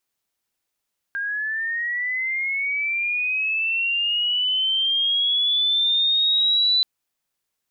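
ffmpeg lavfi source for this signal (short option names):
-f lavfi -i "aevalsrc='pow(10,(-23.5+8*t/5.68)/20)*sin(2*PI*(1600*t+2400*t*t/(2*5.68)))':d=5.68:s=44100"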